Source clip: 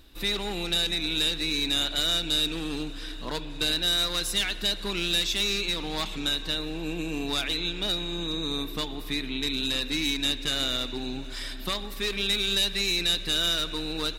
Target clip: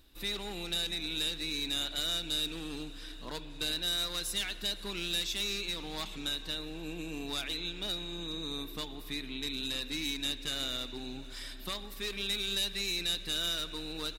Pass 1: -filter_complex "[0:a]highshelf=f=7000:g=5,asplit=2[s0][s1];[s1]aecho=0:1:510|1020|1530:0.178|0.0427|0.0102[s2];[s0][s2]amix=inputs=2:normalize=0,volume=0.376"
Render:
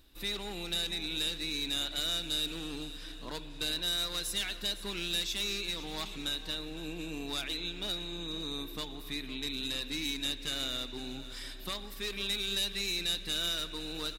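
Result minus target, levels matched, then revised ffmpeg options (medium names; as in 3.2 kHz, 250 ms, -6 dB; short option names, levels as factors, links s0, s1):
echo-to-direct +11.5 dB
-filter_complex "[0:a]highshelf=f=7000:g=5,asplit=2[s0][s1];[s1]aecho=0:1:510|1020:0.0473|0.0114[s2];[s0][s2]amix=inputs=2:normalize=0,volume=0.376"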